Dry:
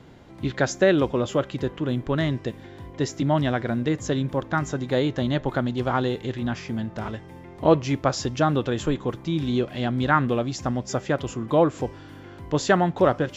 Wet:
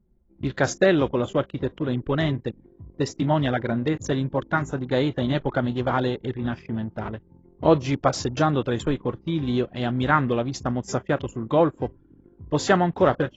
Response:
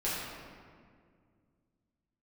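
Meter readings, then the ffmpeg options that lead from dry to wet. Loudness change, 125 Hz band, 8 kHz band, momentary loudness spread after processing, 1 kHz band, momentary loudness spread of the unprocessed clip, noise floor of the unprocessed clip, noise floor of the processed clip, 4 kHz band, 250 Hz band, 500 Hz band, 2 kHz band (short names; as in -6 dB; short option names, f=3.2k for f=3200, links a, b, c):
0.0 dB, 0.0 dB, n/a, 9 LU, +0.5 dB, 11 LU, -44 dBFS, -57 dBFS, -0.5 dB, 0.0 dB, 0.0 dB, +0.5 dB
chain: -af "anlmdn=10" -ar 24000 -c:a aac -b:a 24k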